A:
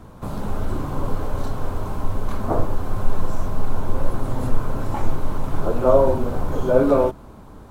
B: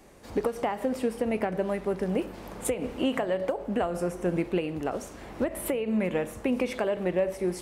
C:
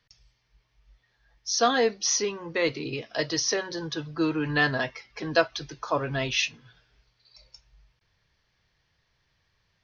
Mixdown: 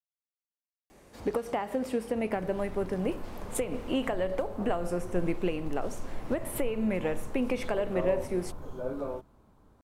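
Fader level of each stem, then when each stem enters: −18.5 dB, −2.5 dB, muted; 2.10 s, 0.90 s, muted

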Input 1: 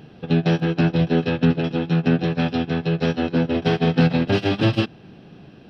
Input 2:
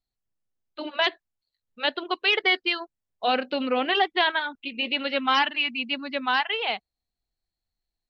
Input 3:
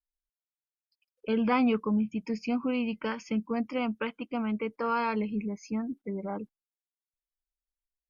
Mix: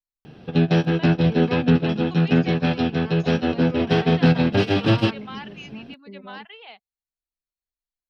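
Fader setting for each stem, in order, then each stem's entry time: +0.5, −16.0, −7.0 decibels; 0.25, 0.00, 0.00 seconds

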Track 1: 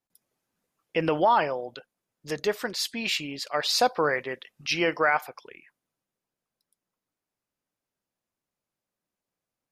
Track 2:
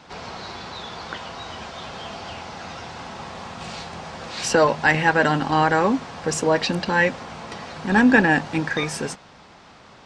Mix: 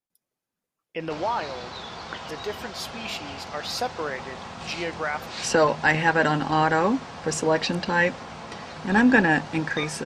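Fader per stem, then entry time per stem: −6.0, −2.5 decibels; 0.00, 1.00 seconds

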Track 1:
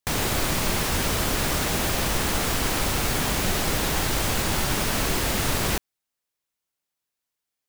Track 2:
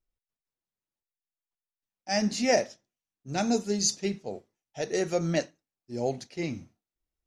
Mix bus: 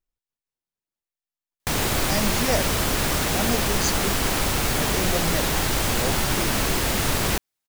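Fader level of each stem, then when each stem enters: +1.5, −1.5 decibels; 1.60, 0.00 seconds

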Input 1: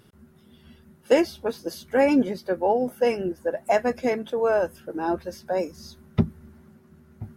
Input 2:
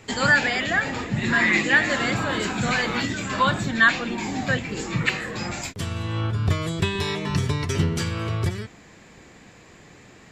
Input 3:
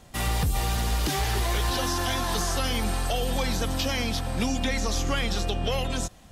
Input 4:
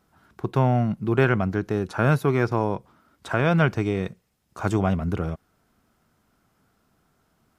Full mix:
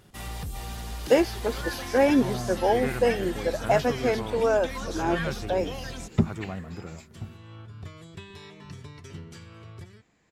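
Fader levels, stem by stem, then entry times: −1.0, −19.0, −10.0, −13.0 decibels; 0.00, 1.35, 0.00, 1.65 seconds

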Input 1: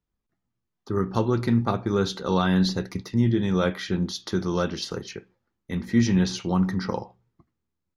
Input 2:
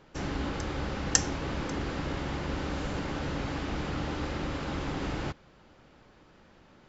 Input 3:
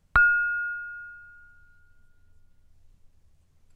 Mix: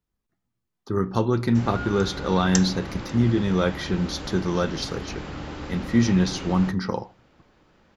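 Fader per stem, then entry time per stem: +1.0, −1.5, −17.0 decibels; 0.00, 1.40, 1.60 seconds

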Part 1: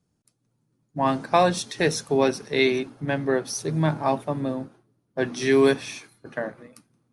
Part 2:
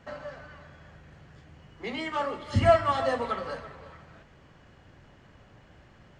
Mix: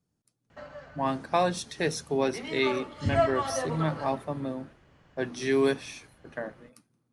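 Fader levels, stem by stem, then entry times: −6.0, −4.5 decibels; 0.00, 0.50 seconds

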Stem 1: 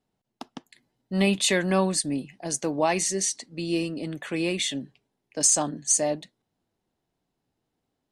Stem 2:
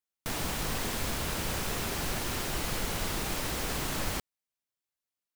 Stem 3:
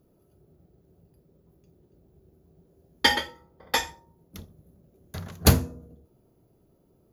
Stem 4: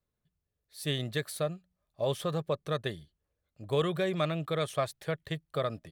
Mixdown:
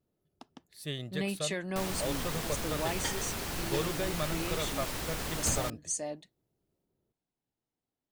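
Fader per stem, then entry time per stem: −12.0, −3.5, −17.5, −5.5 decibels; 0.00, 1.50, 0.00, 0.00 seconds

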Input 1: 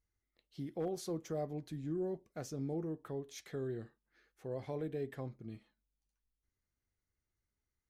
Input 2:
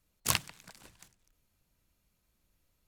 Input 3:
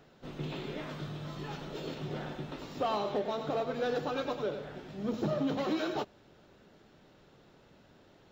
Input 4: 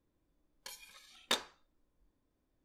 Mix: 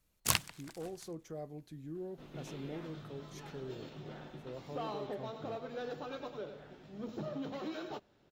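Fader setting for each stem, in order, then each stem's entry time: −5.5 dB, −1.0 dB, −9.0 dB, muted; 0.00 s, 0.00 s, 1.95 s, muted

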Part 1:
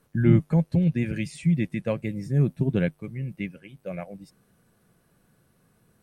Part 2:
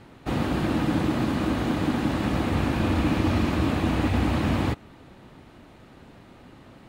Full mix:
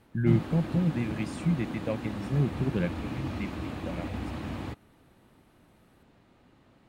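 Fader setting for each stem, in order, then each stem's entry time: −5.0, −12.0 decibels; 0.00, 0.00 seconds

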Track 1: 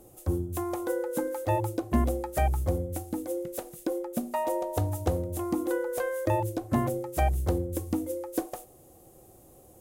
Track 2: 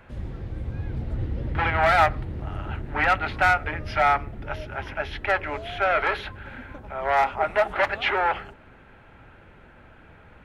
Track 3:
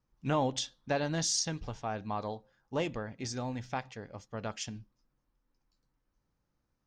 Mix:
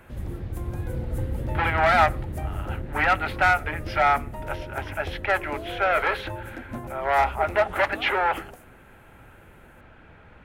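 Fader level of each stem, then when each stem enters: −10.0 dB, 0.0 dB, muted; 0.00 s, 0.00 s, muted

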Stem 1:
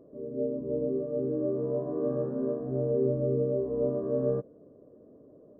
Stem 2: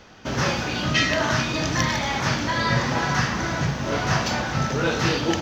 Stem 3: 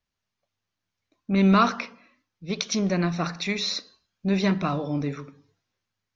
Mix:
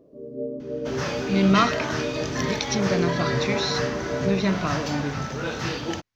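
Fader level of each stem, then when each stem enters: 0.0, −6.5, −0.5 decibels; 0.00, 0.60, 0.00 seconds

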